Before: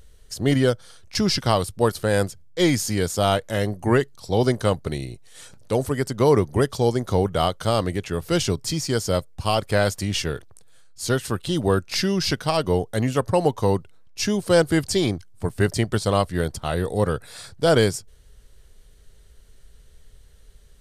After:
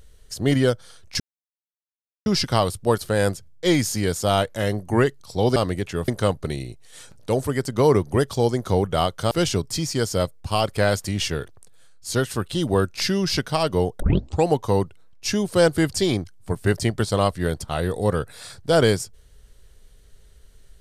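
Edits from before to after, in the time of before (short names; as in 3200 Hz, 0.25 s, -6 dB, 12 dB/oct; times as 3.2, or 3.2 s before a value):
1.2 insert silence 1.06 s
7.73–8.25 move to 4.5
12.94 tape start 0.46 s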